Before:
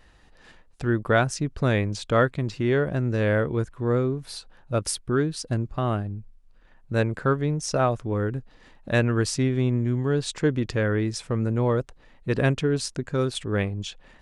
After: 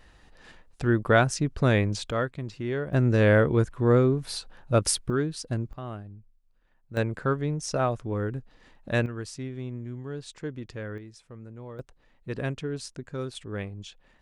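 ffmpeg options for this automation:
ffmpeg -i in.wav -af "asetnsamples=nb_out_samples=441:pad=0,asendcmd='2.11 volume volume -7.5dB;2.93 volume volume 3dB;5.1 volume volume -3.5dB;5.73 volume volume -12dB;6.97 volume volume -3.5dB;9.06 volume volume -12.5dB;10.98 volume volume -19dB;11.79 volume volume -9dB',volume=0.5dB" out.wav

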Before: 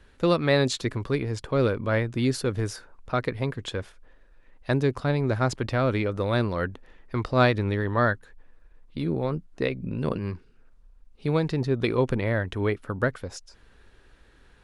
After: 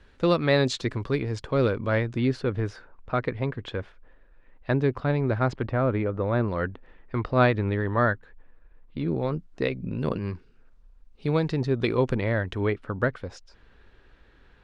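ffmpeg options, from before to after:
ffmpeg -i in.wav -af "asetnsamples=nb_out_samples=441:pad=0,asendcmd='2.18 lowpass f 2900;5.62 lowpass f 1600;6.48 lowpass f 2900;9.08 lowpass f 6900;12.6 lowpass f 4000',lowpass=6300" out.wav

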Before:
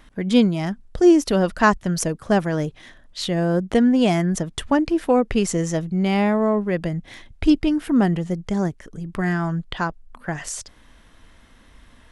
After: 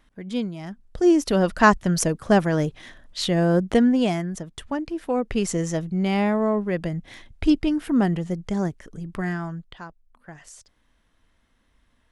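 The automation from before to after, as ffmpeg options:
ffmpeg -i in.wav -af "volume=7.5dB,afade=type=in:start_time=0.63:duration=1.05:silence=0.251189,afade=type=out:start_time=3.6:duration=0.71:silence=0.316228,afade=type=in:start_time=5:duration=0.5:silence=0.473151,afade=type=out:start_time=9.05:duration=0.73:silence=0.237137" out.wav

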